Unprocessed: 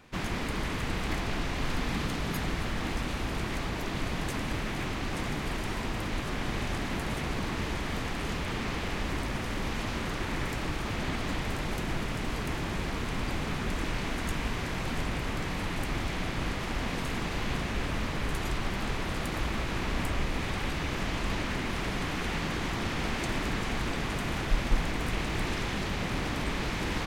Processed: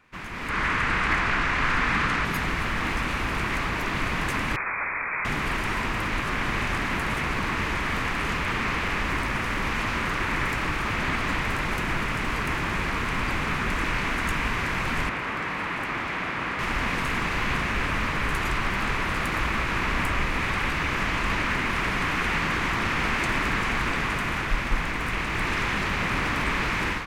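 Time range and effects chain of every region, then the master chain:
0.49–2.25 LPF 8800 Hz + bell 1500 Hz +6 dB 1.2 oct
4.56–5.25 steep high-pass 610 Hz 48 dB/oct + inverted band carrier 3100 Hz
15.09–16.59 HPF 270 Hz 6 dB/oct + high shelf 4200 Hz -11 dB
whole clip: band shelf 1600 Hz +8 dB; AGC gain up to 11.5 dB; gain -8.5 dB

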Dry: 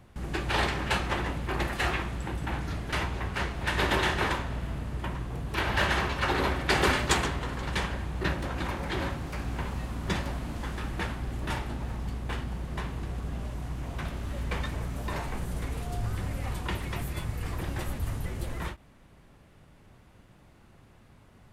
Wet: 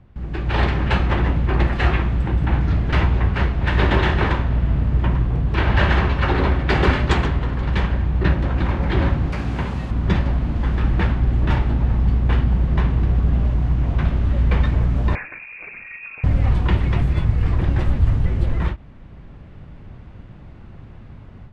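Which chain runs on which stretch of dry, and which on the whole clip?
9.32–9.91 HPF 140 Hz 6 dB/oct + high shelf 5300 Hz +11.5 dB
15.15–16.24 formant sharpening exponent 1.5 + HPF 200 Hz + inverted band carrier 2600 Hz
whole clip: low shelf 240 Hz +11 dB; AGC gain up to 11.5 dB; LPF 3400 Hz 12 dB/oct; gain -3 dB

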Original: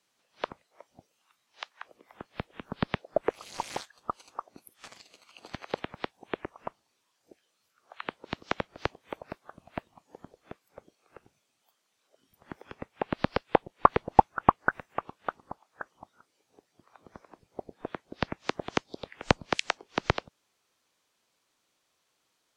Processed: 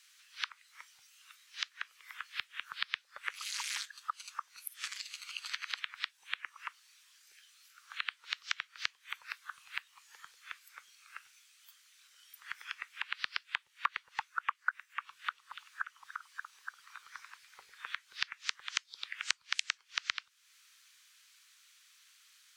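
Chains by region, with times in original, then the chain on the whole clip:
15.06–17.8 notches 50/100/150/200/250/300/350/400/450/500 Hz + delay with a stepping band-pass 0.29 s, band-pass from 3500 Hz, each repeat -0.7 oct, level -6 dB
whole clip: inverse Chebyshev high-pass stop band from 720 Hz, stop band 40 dB; compressor 2.5:1, threshold -51 dBFS; gain +13.5 dB

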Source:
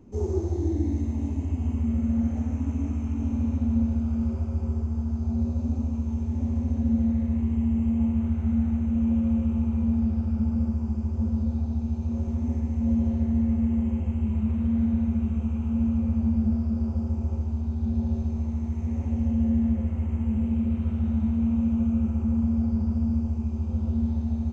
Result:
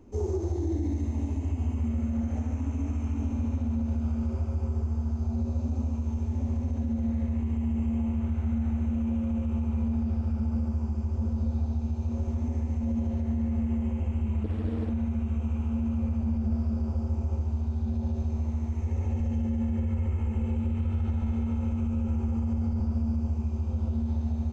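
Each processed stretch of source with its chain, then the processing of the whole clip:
14.44–14.9 doubler 20 ms -4.5 dB + Doppler distortion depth 0.88 ms
18.81–22.8 comb 2.3 ms, depth 39% + feedback echo 0.101 s, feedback 59%, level -6 dB
whole clip: bell 170 Hz -11.5 dB 0.82 oct; limiter -22.5 dBFS; gain +1.5 dB

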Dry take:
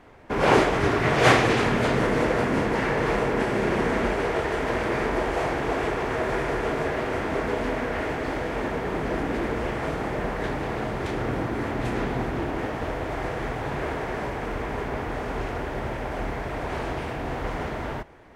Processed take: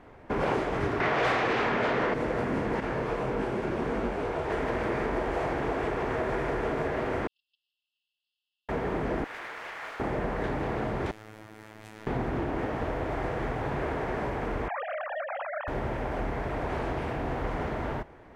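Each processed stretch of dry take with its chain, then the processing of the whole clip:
1–2.14 LPF 6100 Hz + overdrive pedal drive 18 dB, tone 4000 Hz, clips at -4.5 dBFS
2.8–4.5 bell 1900 Hz -5.5 dB 0.25 oct + detuned doubles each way 58 cents
7.27–8.69 gate -22 dBFS, range -34 dB + brick-wall FIR band-pass 2600–5400 Hz
9.24–10 HPF 1400 Hz + running maximum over 3 samples
11.11–12.07 pre-emphasis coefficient 0.9 + robotiser 108 Hz
14.68–15.68 sine-wave speech + HPF 680 Hz 24 dB/oct
whole clip: high shelf 2700 Hz -8 dB; compressor 4:1, threshold -26 dBFS

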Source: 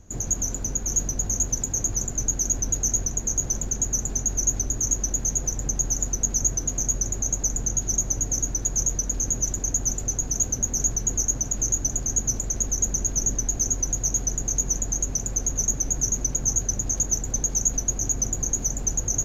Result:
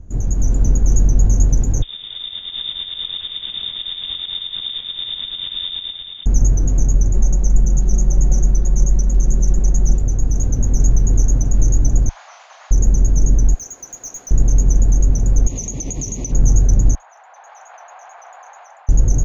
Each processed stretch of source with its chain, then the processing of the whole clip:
1.82–6.26 compressor 5:1, threshold -25 dBFS + inverted band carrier 3600 Hz
7.14–9.98 comb 5.4 ms, depth 82% + Doppler distortion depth 0.13 ms
12.09–12.71 delta modulation 32 kbps, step -40 dBFS + steep high-pass 720 Hz 48 dB/oct + flutter echo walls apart 7.1 m, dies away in 0.43 s
13.54–14.31 HPF 950 Hz + high shelf 8700 Hz +4.5 dB + overloaded stage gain 21.5 dB
15.47–16.32 weighting filter D + compressor 2.5:1, threshold -21 dBFS + Butterworth band-stop 1500 Hz, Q 1.8
16.95–18.89 steep high-pass 750 Hz 48 dB/oct + air absorption 450 m + fast leveller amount 50%
whole clip: tilt -3.5 dB/oct; AGC; gain -1 dB

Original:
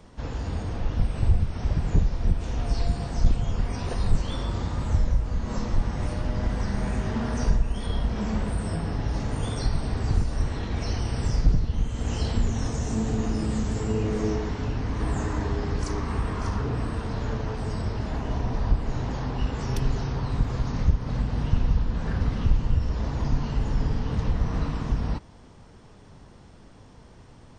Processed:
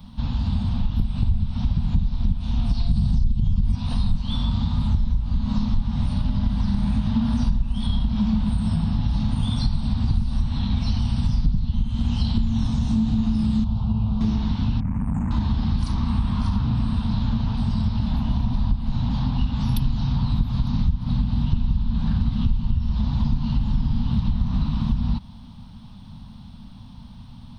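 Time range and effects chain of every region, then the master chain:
2.91–3.75 tone controls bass +14 dB, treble +8 dB + compressor, threshold -14 dBFS
13.64–14.21 air absorption 230 m + fixed phaser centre 790 Hz, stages 4
14.8–15.31 elliptic band-stop 2300–7000 Hz + core saturation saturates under 300 Hz
whole clip: EQ curve 140 Hz 0 dB, 230 Hz +5 dB, 380 Hz -28 dB, 910 Hz -5 dB, 1900 Hz -15 dB, 3800 Hz +4 dB, 7400 Hz -21 dB, 11000 Hz +7 dB; compressor 4:1, threshold -26 dBFS; gain +8.5 dB

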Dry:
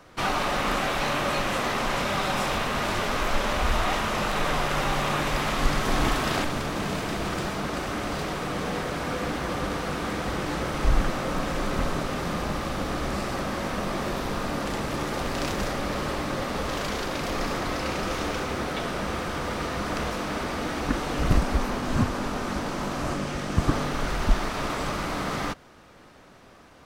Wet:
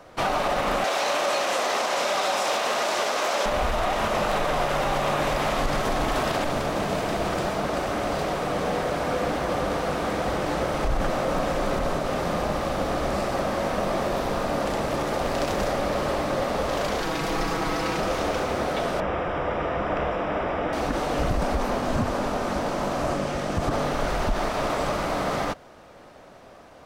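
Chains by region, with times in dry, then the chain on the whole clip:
0.84–3.46 HPF 360 Hz + bell 6100 Hz +7.5 dB 1.5 oct
17–18 bell 590 Hz -13.5 dB 0.24 oct + comb 6.2 ms, depth 57%
19–20.73 polynomial smoothing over 25 samples + notch 230 Hz, Q 6.7
whole clip: bell 630 Hz +8.5 dB 1 oct; limiter -15 dBFS

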